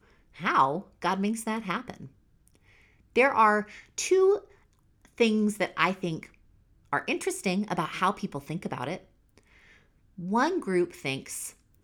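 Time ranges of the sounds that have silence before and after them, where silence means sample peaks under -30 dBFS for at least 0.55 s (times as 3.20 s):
3.16–4.38 s
5.20–6.23 s
6.93–8.95 s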